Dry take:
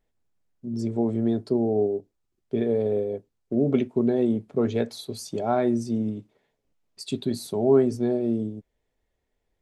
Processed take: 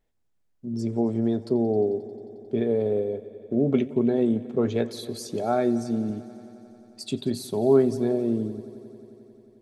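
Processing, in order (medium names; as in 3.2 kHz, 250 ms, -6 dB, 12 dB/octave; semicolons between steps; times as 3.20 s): 5.43–6.10 s: comb of notches 1 kHz; multi-head delay 89 ms, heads all three, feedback 71%, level -23.5 dB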